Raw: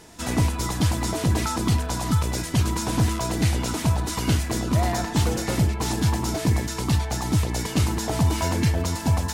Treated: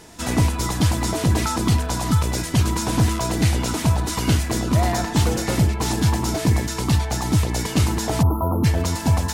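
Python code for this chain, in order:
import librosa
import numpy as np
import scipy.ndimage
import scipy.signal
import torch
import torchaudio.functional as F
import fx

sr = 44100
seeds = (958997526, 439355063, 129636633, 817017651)

y = fx.spec_erase(x, sr, start_s=8.22, length_s=0.42, low_hz=1400.0, high_hz=11000.0)
y = y * librosa.db_to_amplitude(3.0)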